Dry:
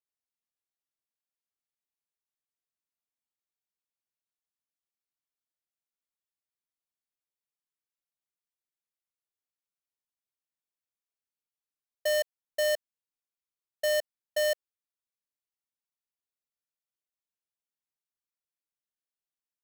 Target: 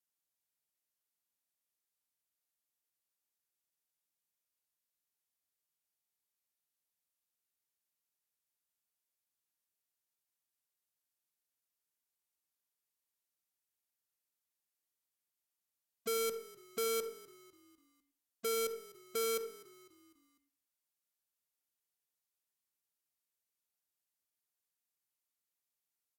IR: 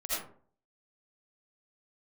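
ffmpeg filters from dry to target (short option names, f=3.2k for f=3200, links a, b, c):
-filter_complex "[0:a]highpass=f=75:w=0.5412,highpass=f=75:w=1.3066,asplit=2[a][b];[b]asetrate=22050,aresample=44100,atempo=2,volume=-14dB[c];[a][c]amix=inputs=2:normalize=0,asoftclip=type=tanh:threshold=-30.5dB,asetrate=33075,aresample=44100,asplit=5[d][e][f][g][h];[e]adelay=250,afreqshift=-43,volume=-19.5dB[i];[f]adelay=500,afreqshift=-86,volume=-26.1dB[j];[g]adelay=750,afreqshift=-129,volume=-32.6dB[k];[h]adelay=1000,afreqshift=-172,volume=-39.2dB[l];[d][i][j][k][l]amix=inputs=5:normalize=0,asplit=2[m][n];[1:a]atrim=start_sample=2205,asetrate=61740,aresample=44100,highshelf=f=4.1k:g=-9[o];[n][o]afir=irnorm=-1:irlink=0,volume=-9.5dB[p];[m][p]amix=inputs=2:normalize=0,crystalizer=i=1.5:c=0,volume=-4dB"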